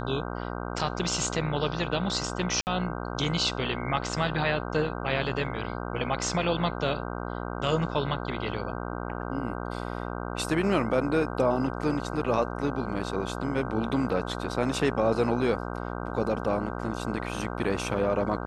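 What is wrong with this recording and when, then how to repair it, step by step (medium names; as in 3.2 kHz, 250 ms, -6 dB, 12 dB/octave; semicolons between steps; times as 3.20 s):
buzz 60 Hz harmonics 26 -34 dBFS
2.61–2.67 s: dropout 59 ms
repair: de-hum 60 Hz, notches 26; interpolate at 2.61 s, 59 ms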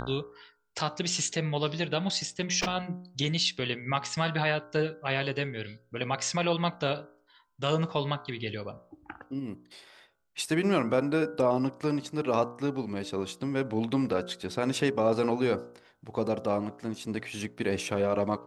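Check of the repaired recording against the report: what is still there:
nothing left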